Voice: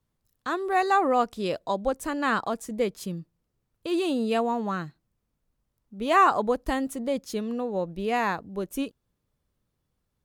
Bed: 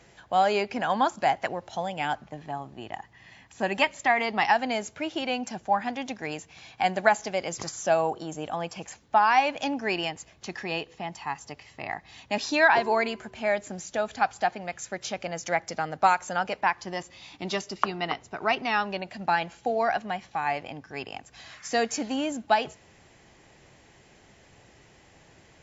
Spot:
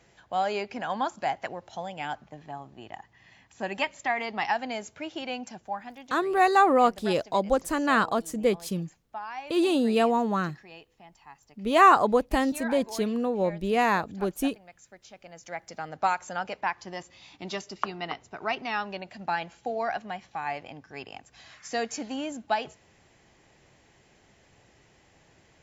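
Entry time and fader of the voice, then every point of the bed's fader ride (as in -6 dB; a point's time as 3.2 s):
5.65 s, +2.5 dB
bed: 5.39 s -5 dB
6.31 s -17 dB
15.1 s -17 dB
15.97 s -4.5 dB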